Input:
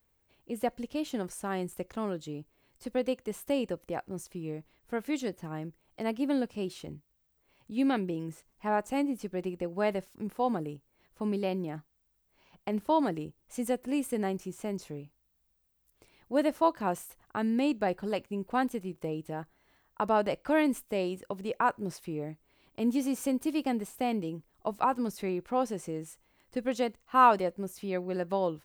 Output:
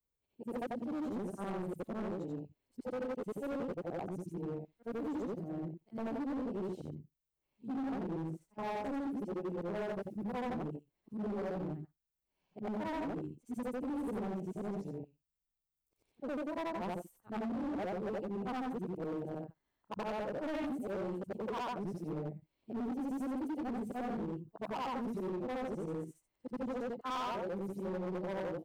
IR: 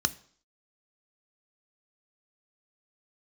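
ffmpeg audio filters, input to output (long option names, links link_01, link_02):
-af "afftfilt=real='re':imag='-im':win_size=8192:overlap=0.75,afwtdn=0.0126,equalizer=frequency=1900:width=0.77:gain=-4,acompressor=threshold=-34dB:ratio=8,asoftclip=type=hard:threshold=-39.5dB,volume=4.5dB"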